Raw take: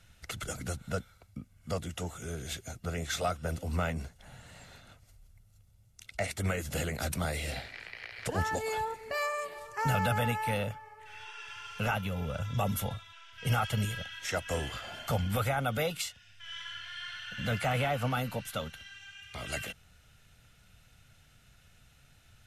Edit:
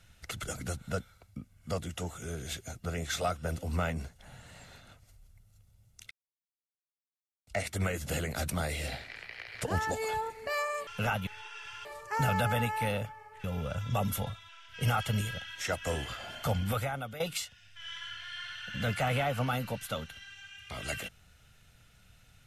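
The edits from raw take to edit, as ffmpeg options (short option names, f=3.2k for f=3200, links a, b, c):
-filter_complex "[0:a]asplit=7[a][b][c][d][e][f][g];[a]atrim=end=6.11,asetpts=PTS-STARTPTS,afade=t=out:st=6.106:d=0.004:c=hsin,apad=pad_dur=1.36[h];[b]atrim=start=6.11:end=9.512,asetpts=PTS-STARTPTS,afade=t=in:d=0.004:c=hsin[i];[c]atrim=start=11.678:end=12.082[j];[d]atrim=start=11.098:end=11.682[k];[e]atrim=start=9.508:end=11.102[l];[f]atrim=start=12.078:end=15.84,asetpts=PTS-STARTPTS,afade=t=out:st=3.202:d=0.56:silence=0.177828[m];[g]atrim=start=15.84,asetpts=PTS-STARTPTS,afade=t=in:d=0.004:c=hsin:silence=0.177828[n];[h][i]concat=n=2:v=0:a=1[o];[o][j]acrossfade=d=0.004:c1=hsin:c2=hsin[p];[p][k]acrossfade=d=0.004:c1=hsin:c2=hsin[q];[q][l]acrossfade=d=0.004:c1=hsin:c2=hsin[r];[m][n]concat=n=2:v=0:a=1[s];[r][s]acrossfade=d=0.004:c1=hsin:c2=hsin"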